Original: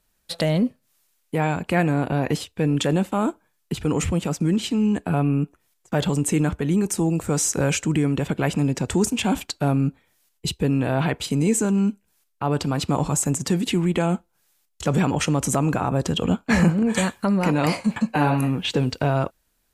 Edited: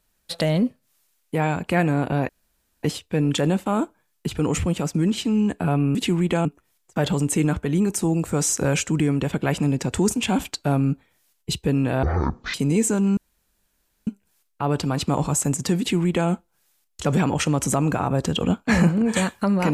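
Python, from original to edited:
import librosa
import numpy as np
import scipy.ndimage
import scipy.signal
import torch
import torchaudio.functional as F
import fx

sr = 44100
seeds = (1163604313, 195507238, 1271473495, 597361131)

y = fx.edit(x, sr, fx.insert_room_tone(at_s=2.29, length_s=0.54),
    fx.speed_span(start_s=10.99, length_s=0.26, speed=0.51),
    fx.insert_room_tone(at_s=11.88, length_s=0.9),
    fx.duplicate(start_s=13.6, length_s=0.5, to_s=5.41), tone=tone)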